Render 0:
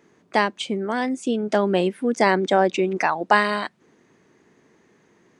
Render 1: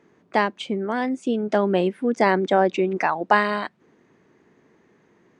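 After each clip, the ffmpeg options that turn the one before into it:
-af "lowpass=f=2.7k:p=1"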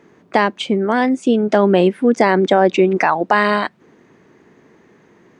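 -af "alimiter=level_in=9.5dB:limit=-1dB:release=50:level=0:latency=1,volume=-1dB"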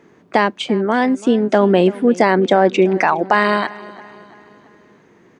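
-af "aecho=1:1:337|674|1011|1348:0.106|0.0508|0.0244|0.0117"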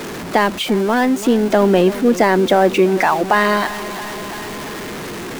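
-af "aeval=exprs='val(0)+0.5*0.0841*sgn(val(0))':c=same,volume=-1dB"

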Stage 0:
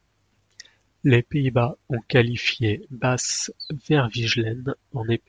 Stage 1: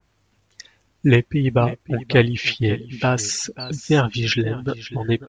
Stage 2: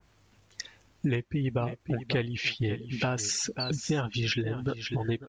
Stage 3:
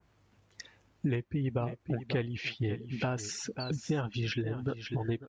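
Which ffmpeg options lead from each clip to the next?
-af "aecho=1:1:543:0.158,adynamicequalizer=threshold=0.0178:dfrequency=2100:dqfactor=0.7:tfrequency=2100:tqfactor=0.7:attack=5:release=100:ratio=0.375:range=2:mode=cutabove:tftype=highshelf,volume=2.5dB"
-af "acompressor=threshold=-29dB:ratio=5,volume=1.5dB"
-af "highpass=49,highshelf=f=2.5k:g=-8,volume=-2.5dB"

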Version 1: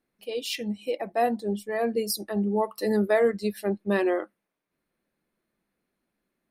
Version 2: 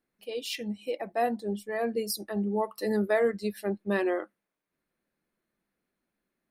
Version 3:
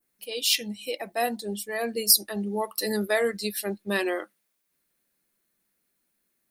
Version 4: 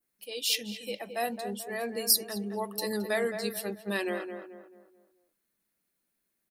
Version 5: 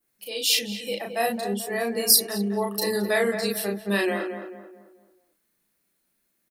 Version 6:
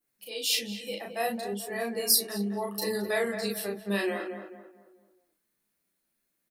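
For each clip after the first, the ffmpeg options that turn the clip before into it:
-af "equalizer=f=1.6k:t=o:w=0.77:g=2,volume=-3.5dB"
-af "crystalizer=i=4.5:c=0,adynamicequalizer=threshold=0.00794:dfrequency=3800:dqfactor=0.85:tfrequency=3800:tqfactor=0.85:attack=5:release=100:ratio=0.375:range=2.5:mode=boostabove:tftype=bell,volume=-1dB"
-filter_complex "[0:a]asplit=2[a][b];[b]adelay=218,lowpass=f=1.6k:p=1,volume=-7dB,asplit=2[c][d];[d]adelay=218,lowpass=f=1.6k:p=1,volume=0.42,asplit=2[e][f];[f]adelay=218,lowpass=f=1.6k:p=1,volume=0.42,asplit=2[g][h];[h]adelay=218,lowpass=f=1.6k:p=1,volume=0.42,asplit=2[i][j];[j]adelay=218,lowpass=f=1.6k:p=1,volume=0.42[k];[a][c][e][g][i][k]amix=inputs=6:normalize=0,volume=-5dB"
-filter_complex "[0:a]asplit=2[a][b];[b]adelay=35,volume=-2.5dB[c];[a][c]amix=inputs=2:normalize=0,volume=5dB"
-af "flanger=delay=6.4:depth=8.7:regen=-43:speed=0.63:shape=triangular,volume=-1.5dB"

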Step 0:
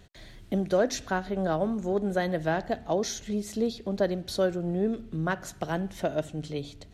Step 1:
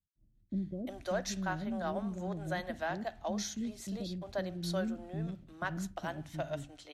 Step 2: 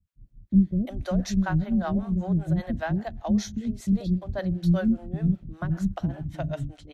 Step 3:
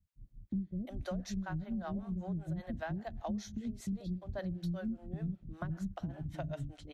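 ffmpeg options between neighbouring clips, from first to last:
-filter_complex "[0:a]equalizer=f=440:t=o:w=0.42:g=-12,agate=range=-33dB:threshold=-37dB:ratio=3:detection=peak,acrossover=split=380[a][b];[b]adelay=350[c];[a][c]amix=inputs=2:normalize=0,volume=-5.5dB"
-filter_complex "[0:a]bass=f=250:g=9,treble=f=4k:g=-4,acrossover=split=420[a][b];[a]aeval=exprs='val(0)*(1-1/2+1/2*cos(2*PI*5.1*n/s))':c=same[c];[b]aeval=exprs='val(0)*(1-1/2-1/2*cos(2*PI*5.1*n/s))':c=same[d];[c][d]amix=inputs=2:normalize=0,lowshelf=f=300:g=8.5,volume=6dB"
-af "acompressor=threshold=-33dB:ratio=4,volume=-3.5dB"

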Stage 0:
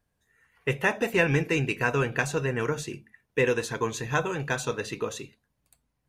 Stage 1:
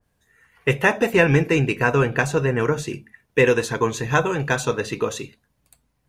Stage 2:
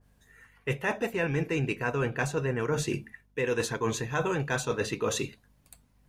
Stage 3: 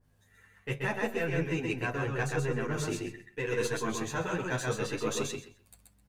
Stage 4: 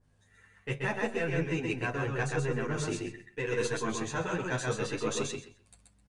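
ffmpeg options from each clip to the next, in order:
-af "adynamicequalizer=threshold=0.0112:dfrequency=1700:dqfactor=0.7:tfrequency=1700:tqfactor=0.7:attack=5:release=100:ratio=0.375:range=2.5:mode=cutabove:tftype=highshelf,volume=7.5dB"
-af "areverse,acompressor=threshold=-27dB:ratio=10,areverse,aeval=exprs='val(0)+0.000501*(sin(2*PI*50*n/s)+sin(2*PI*2*50*n/s)/2+sin(2*PI*3*50*n/s)/3+sin(2*PI*4*50*n/s)/4+sin(2*PI*5*50*n/s)/5)':c=same,volume=1.5dB"
-filter_complex "[0:a]aeval=exprs='if(lt(val(0),0),0.708*val(0),val(0))':c=same,asplit=2[a][b];[b]aecho=0:1:130|260|390:0.708|0.127|0.0229[c];[a][c]amix=inputs=2:normalize=0,asplit=2[d][e];[e]adelay=9.9,afreqshift=0.76[f];[d][f]amix=inputs=2:normalize=1"
-af "aresample=22050,aresample=44100"

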